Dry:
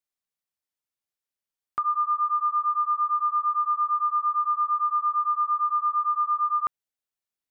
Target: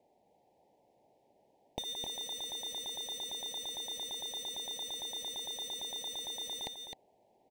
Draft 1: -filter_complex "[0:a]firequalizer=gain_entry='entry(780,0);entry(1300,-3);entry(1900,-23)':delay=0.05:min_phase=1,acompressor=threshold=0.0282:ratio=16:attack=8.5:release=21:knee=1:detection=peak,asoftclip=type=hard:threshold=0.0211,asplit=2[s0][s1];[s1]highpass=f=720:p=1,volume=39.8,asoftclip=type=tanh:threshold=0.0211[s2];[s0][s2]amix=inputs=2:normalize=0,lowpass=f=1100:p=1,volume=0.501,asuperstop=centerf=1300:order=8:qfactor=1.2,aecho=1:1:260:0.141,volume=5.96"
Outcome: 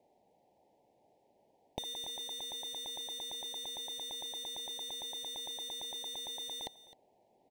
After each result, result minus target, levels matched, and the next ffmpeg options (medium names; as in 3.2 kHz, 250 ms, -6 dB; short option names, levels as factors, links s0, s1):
echo-to-direct -11 dB; compression: peak gain reduction +7 dB
-filter_complex "[0:a]firequalizer=gain_entry='entry(780,0);entry(1300,-3);entry(1900,-23)':delay=0.05:min_phase=1,acompressor=threshold=0.0282:ratio=16:attack=8.5:release=21:knee=1:detection=peak,asoftclip=type=hard:threshold=0.0211,asplit=2[s0][s1];[s1]highpass=f=720:p=1,volume=39.8,asoftclip=type=tanh:threshold=0.0211[s2];[s0][s2]amix=inputs=2:normalize=0,lowpass=f=1100:p=1,volume=0.501,asuperstop=centerf=1300:order=8:qfactor=1.2,aecho=1:1:260:0.501,volume=5.96"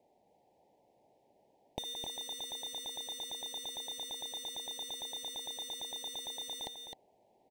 compression: peak gain reduction +7 dB
-filter_complex "[0:a]firequalizer=gain_entry='entry(780,0);entry(1300,-3);entry(1900,-23)':delay=0.05:min_phase=1,asoftclip=type=hard:threshold=0.0211,asplit=2[s0][s1];[s1]highpass=f=720:p=1,volume=39.8,asoftclip=type=tanh:threshold=0.0211[s2];[s0][s2]amix=inputs=2:normalize=0,lowpass=f=1100:p=1,volume=0.501,asuperstop=centerf=1300:order=8:qfactor=1.2,aecho=1:1:260:0.501,volume=5.96"